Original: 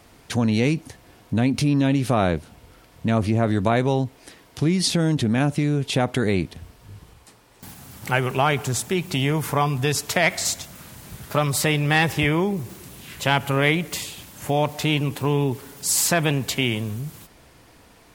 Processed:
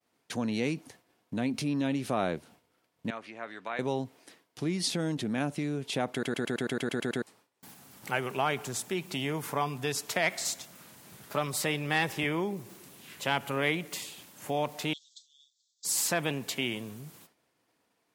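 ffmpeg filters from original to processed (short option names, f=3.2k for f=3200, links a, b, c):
-filter_complex "[0:a]asettb=1/sr,asplit=3[a][b][c];[a]atrim=end=3.104[d];[b]atrim=start=3.1:end=3.79,asetpts=PTS-STARTPTS,afade=t=in:d=0.004:c=qsin,afade=t=out:st=0.686:d=0.004:c=qsin,bandpass=f=1.9k:t=q:w=1[e];[c]atrim=start=3.786[f];[d][e]acrossfade=d=0.004:c1=hsin:c2=qsin[g];[g][f]acrossfade=d=0.004:c1=qsin:c2=hsin,asettb=1/sr,asplit=3[h][i][j];[h]atrim=end=14.934[k];[i]atrim=start=14.93:end=15.85,asetpts=PTS-STARTPTS,afade=t=in:d=0.004:c=qsin,afade=t=out:st=0.916:d=0.004:c=qsin,asuperpass=centerf=5200:order=20:qfactor=1.2[l];[j]atrim=start=15.846[m];[k][l]acrossfade=d=0.004:c1=hsin:c2=qsin[n];[n][m]acrossfade=d=0.004:c1=qsin:c2=hsin,asplit=11[o][p][q][r][s][t][u][v][w][x][y];[o]atrim=end=6.232[z];[p]atrim=start=6.118:end=6.232[aa];[q]atrim=start=6.118:end=6.232[ab];[r]atrim=start=6.118:end=6.232[ac];[s]atrim=start=6.118:end=6.232[ad];[t]atrim=start=6.118:end=6.232[ae];[u]atrim=start=6.118:end=6.232[af];[v]atrim=start=6.118:end=6.232[ag];[w]atrim=start=6.118:end=6.232[ah];[x]atrim=start=6.118:end=6.232[ai];[y]atrim=start=7.218[aj];[z][aa]acrossfade=d=0.004:c1=hsin:c2=hsin[ak];[ak][ab]acrossfade=d=0.004:c1=hsin:c2=hsin[al];[al][ac]acrossfade=d=0.004:c1=hsin:c2=hsin[am];[am][ad]acrossfade=d=0.004:c1=hsin:c2=hsin[an];[an][ae]acrossfade=d=0.004:c1=hsin:c2=hsin[ao];[ao][af]acrossfade=d=0.004:c1=hsin:c2=hsin[ap];[ap][ag]acrossfade=d=0.004:c1=hsin:c2=hsin[aq];[aq][ah]acrossfade=d=0.004:c1=hsin:c2=hsin[ar];[ar][ai]acrossfade=d=0.004:c1=hsin:c2=hsin[as];[as][aj]acrossfade=d=0.004:c1=hsin:c2=hsin,highpass=190,agate=range=-33dB:threshold=-43dB:ratio=3:detection=peak,volume=-8.5dB"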